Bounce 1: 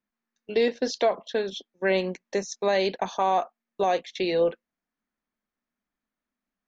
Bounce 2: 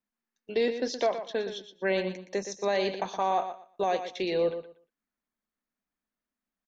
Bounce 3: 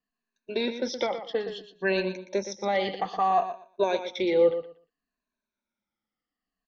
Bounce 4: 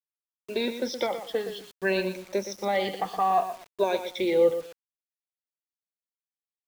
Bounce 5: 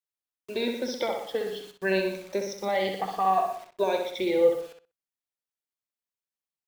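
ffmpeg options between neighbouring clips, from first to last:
ffmpeg -i in.wav -af "aecho=1:1:119|238|357:0.316|0.0632|0.0126,volume=-4dB" out.wav
ffmpeg -i in.wav -af "afftfilt=real='re*pow(10,15/40*sin(2*PI*(1.5*log(max(b,1)*sr/1024/100)/log(2)-(-0.61)*(pts-256)/sr)))':imag='im*pow(10,15/40*sin(2*PI*(1.5*log(max(b,1)*sr/1024/100)/log(2)-(-0.61)*(pts-256)/sr)))':win_size=1024:overlap=0.75,lowpass=frequency=5600:width=0.5412,lowpass=frequency=5600:width=1.3066" out.wav
ffmpeg -i in.wav -af "acrusher=bits=7:mix=0:aa=0.000001" out.wav
ffmpeg -i in.wav -filter_complex "[0:a]asplit=2[link_01][link_02];[link_02]adelay=63,lowpass=frequency=4100:poles=1,volume=-5dB,asplit=2[link_03][link_04];[link_04]adelay=63,lowpass=frequency=4100:poles=1,volume=0.2,asplit=2[link_05][link_06];[link_06]adelay=63,lowpass=frequency=4100:poles=1,volume=0.2[link_07];[link_01][link_03][link_05][link_07]amix=inputs=4:normalize=0,volume=-1.5dB" out.wav

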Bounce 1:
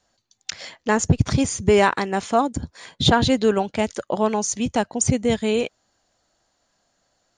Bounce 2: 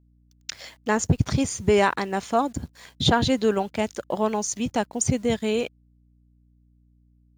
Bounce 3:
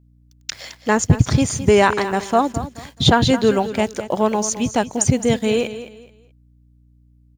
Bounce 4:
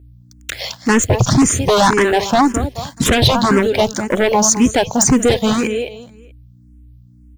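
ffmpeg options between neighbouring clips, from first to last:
ffmpeg -i in.wav -af "acrusher=bits=8:mix=0:aa=0.000001,aeval=exprs='sgn(val(0))*max(abs(val(0))-0.00299,0)':channel_layout=same,aeval=exprs='val(0)+0.00178*(sin(2*PI*60*n/s)+sin(2*PI*2*60*n/s)/2+sin(2*PI*3*60*n/s)/3+sin(2*PI*4*60*n/s)/4+sin(2*PI*5*60*n/s)/5)':channel_layout=same,volume=-3dB" out.wav
ffmpeg -i in.wav -af "equalizer=frequency=120:width=3.2:gain=3.5,aecho=1:1:214|428|642:0.224|0.0604|0.0163,volume=5.5dB" out.wav
ffmpeg -i in.wav -filter_complex "[0:a]asplit=2[link_01][link_02];[link_02]aeval=exprs='0.891*sin(PI/2*5.01*val(0)/0.891)':channel_layout=same,volume=-6dB[link_03];[link_01][link_03]amix=inputs=2:normalize=0,asplit=2[link_04][link_05];[link_05]afreqshift=1.9[link_06];[link_04][link_06]amix=inputs=2:normalize=1,volume=-1.5dB" out.wav

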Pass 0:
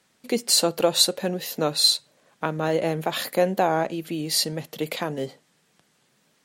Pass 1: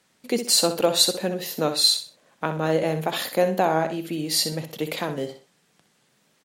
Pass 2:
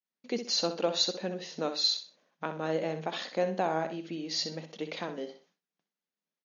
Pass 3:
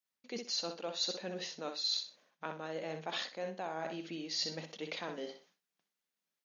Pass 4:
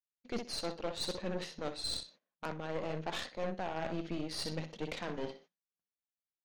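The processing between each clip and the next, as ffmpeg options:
ffmpeg -i in.wav -af "aecho=1:1:63|126|189:0.335|0.0938|0.0263" out.wav
ffmpeg -i in.wav -af "afftfilt=real='re*between(b*sr/4096,160,6800)':imag='im*between(b*sr/4096,160,6800)':win_size=4096:overlap=0.75,agate=range=-33dB:threshold=-52dB:ratio=3:detection=peak,volume=-8.5dB" out.wav
ffmpeg -i in.wav -af "areverse,acompressor=threshold=-36dB:ratio=6,areverse,tiltshelf=frequency=730:gain=-3.5" out.wav
ffmpeg -i in.wav -af "aemphasis=mode=reproduction:type=bsi,agate=range=-19dB:threshold=-58dB:ratio=16:detection=peak,aeval=exprs='0.0668*(cos(1*acos(clip(val(0)/0.0668,-1,1)))-cos(1*PI/2))+0.00841*(cos(8*acos(clip(val(0)/0.0668,-1,1)))-cos(8*PI/2))':channel_layout=same" out.wav

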